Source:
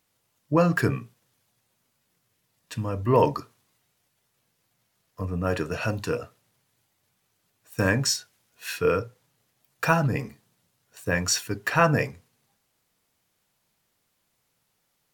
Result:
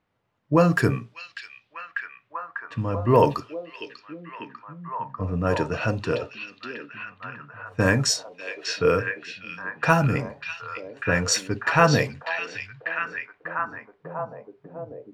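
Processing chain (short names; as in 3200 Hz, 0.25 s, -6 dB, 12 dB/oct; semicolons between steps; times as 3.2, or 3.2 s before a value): low-pass opened by the level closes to 1900 Hz, open at -17.5 dBFS; delay with a stepping band-pass 0.595 s, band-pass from 3300 Hz, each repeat -0.7 oct, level -1 dB; gain +2.5 dB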